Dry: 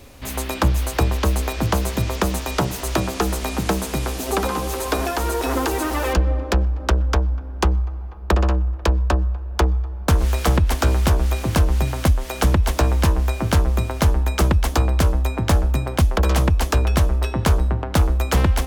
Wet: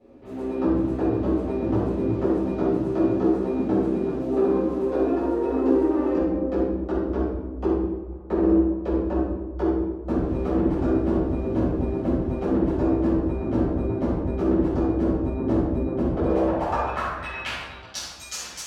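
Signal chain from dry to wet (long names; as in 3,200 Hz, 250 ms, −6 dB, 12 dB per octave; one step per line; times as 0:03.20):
band-pass filter sweep 340 Hz → 6,200 Hz, 0:16.07–0:18.07
rectangular room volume 480 cubic metres, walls mixed, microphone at 6.5 metres
level −8 dB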